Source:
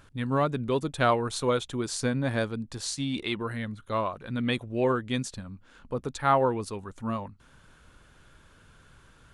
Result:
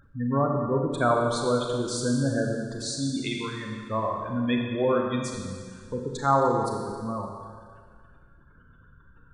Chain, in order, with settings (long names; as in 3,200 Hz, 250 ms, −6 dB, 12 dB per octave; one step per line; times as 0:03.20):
gate on every frequency bin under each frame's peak −15 dB strong
0:03.31–0:03.91: tilt shelving filter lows −4 dB, about 1,300 Hz
four-comb reverb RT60 1.9 s, combs from 29 ms, DRR 1 dB